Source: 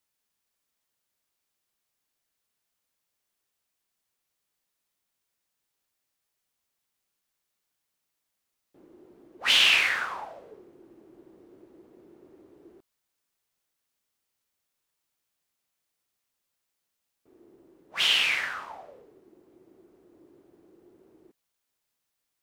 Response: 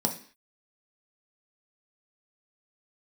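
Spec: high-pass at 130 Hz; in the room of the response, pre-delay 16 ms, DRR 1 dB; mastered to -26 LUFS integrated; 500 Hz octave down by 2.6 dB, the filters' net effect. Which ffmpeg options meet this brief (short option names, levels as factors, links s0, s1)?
-filter_complex "[0:a]highpass=130,equalizer=f=500:t=o:g=-3.5,asplit=2[s0][s1];[1:a]atrim=start_sample=2205,adelay=16[s2];[s1][s2]afir=irnorm=-1:irlink=0,volume=0.376[s3];[s0][s3]amix=inputs=2:normalize=0,volume=0.631"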